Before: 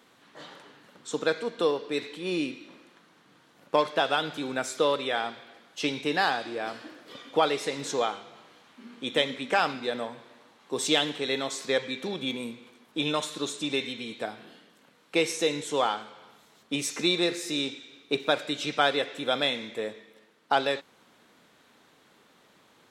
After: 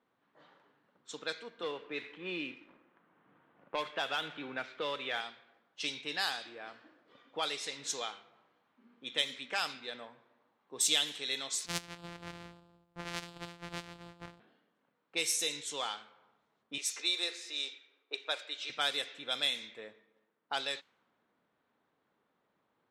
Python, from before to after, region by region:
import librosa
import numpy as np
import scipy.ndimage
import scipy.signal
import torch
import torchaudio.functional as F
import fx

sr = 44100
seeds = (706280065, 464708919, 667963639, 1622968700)

y = fx.chain(x, sr, fx.lowpass(hz=3100.0, slope=24),
    fx.leveller(passes=1),
    fx.band_squash(depth_pct=40), at=(1.63, 5.21))
y = fx.chain(y, sr, fx.sample_sort(block=256),
    fx.echo_single(ms=290, db=-16.5), at=(11.66, 14.4))
y = fx.chain(y, sr, fx.highpass(hz=380.0, slope=24),
    fx.high_shelf(hz=5500.0, db=-7.0), at=(16.78, 18.7))
y = scipy.signal.lfilter([1.0, -0.97], [1.0], y)
y = fx.env_lowpass(y, sr, base_hz=910.0, full_db=-33.0)
y = fx.low_shelf(y, sr, hz=290.0, db=11.0)
y = F.gain(torch.from_numpy(y), 3.5).numpy()